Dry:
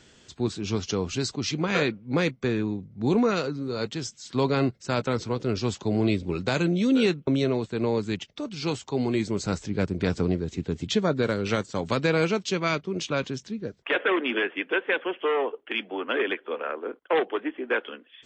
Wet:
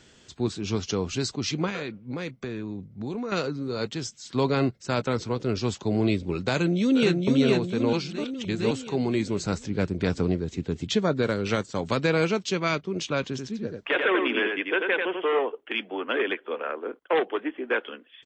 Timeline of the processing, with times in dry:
0:01.69–0:03.32: downward compressor 5 to 1, threshold −29 dBFS
0:06.56–0:07.27: delay throw 460 ms, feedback 55%, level −2.5 dB
0:07.93–0:08.71: reverse
0:13.23–0:15.39: single-tap delay 89 ms −4.5 dB

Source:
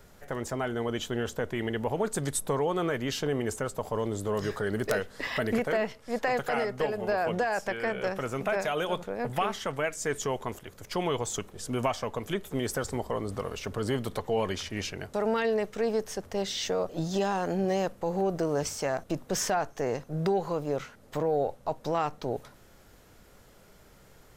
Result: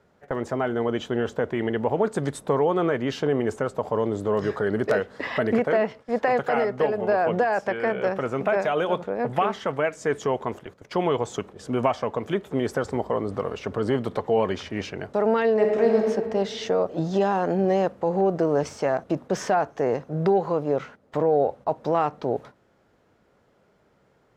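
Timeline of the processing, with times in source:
0:15.52–0:16.06: thrown reverb, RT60 1.9 s, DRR 0 dB
whole clip: meter weighting curve A; noise gate −49 dBFS, range −10 dB; spectral tilt −4.5 dB per octave; level +5.5 dB

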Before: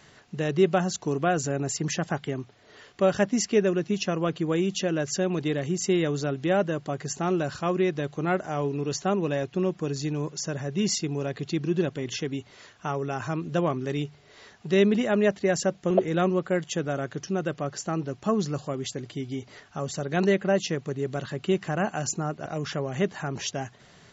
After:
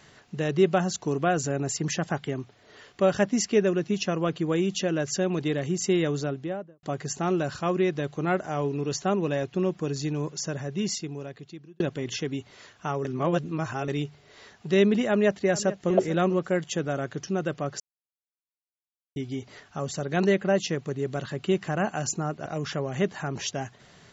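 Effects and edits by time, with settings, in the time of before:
0:06.11–0:06.83: fade out and dull
0:10.44–0:11.80: fade out linear
0:13.05–0:13.88: reverse
0:15.08–0:15.92: delay throw 440 ms, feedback 20%, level −16 dB
0:17.80–0:19.16: silence

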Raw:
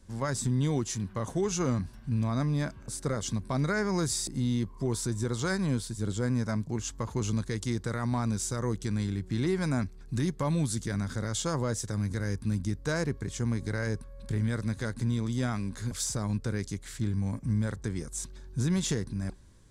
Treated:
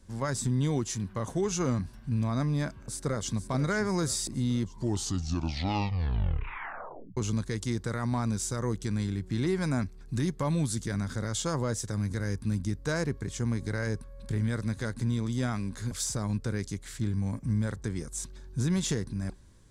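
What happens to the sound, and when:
0:02.77–0:03.48: delay throw 480 ms, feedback 55%, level −12 dB
0:04.62: tape stop 2.55 s

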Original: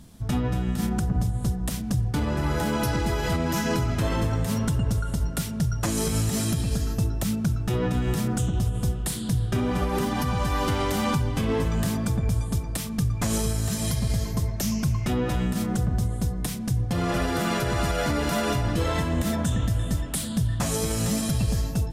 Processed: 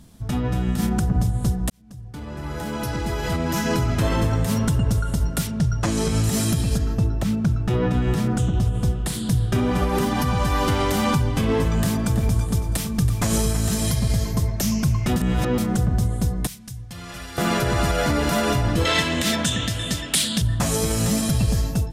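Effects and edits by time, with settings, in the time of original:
0:01.70–0:04.00: fade in
0:05.47–0:06.24: high-frequency loss of the air 54 metres
0:06.77–0:09.13: low-pass filter 2,200 Hz → 5,700 Hz 6 dB per octave
0:11.66–0:13.87: repeating echo 328 ms, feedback 33%, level −11.5 dB
0:15.16–0:15.58: reverse
0:16.47–0:17.38: guitar amp tone stack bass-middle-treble 5-5-5
0:18.85–0:20.42: meter weighting curve D
whole clip: automatic gain control gain up to 4 dB

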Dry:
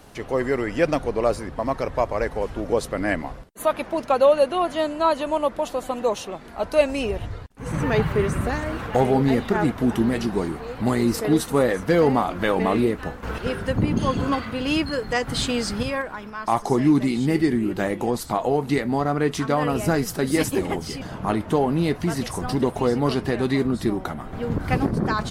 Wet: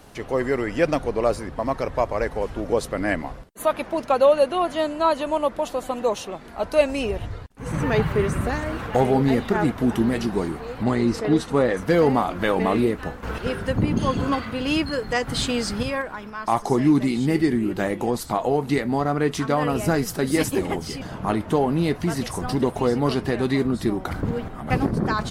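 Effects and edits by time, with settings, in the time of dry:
0:10.83–0:11.77: high-frequency loss of the air 76 metres
0:24.11–0:24.70: reverse

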